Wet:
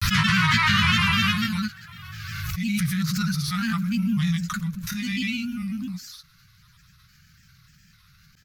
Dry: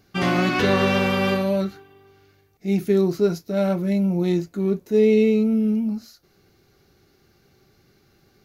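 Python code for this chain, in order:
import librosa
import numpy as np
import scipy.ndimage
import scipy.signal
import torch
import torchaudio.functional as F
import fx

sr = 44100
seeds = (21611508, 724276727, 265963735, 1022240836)

y = scipy.signal.sosfilt(scipy.signal.ellip(3, 1.0, 50, [160.0, 1300.0], 'bandstop', fs=sr, output='sos'), x)
y = fx.granulator(y, sr, seeds[0], grain_ms=100.0, per_s=20.0, spray_ms=100.0, spread_st=3)
y = fx.pre_swell(y, sr, db_per_s=24.0)
y = F.gain(torch.from_numpy(y), 7.0).numpy()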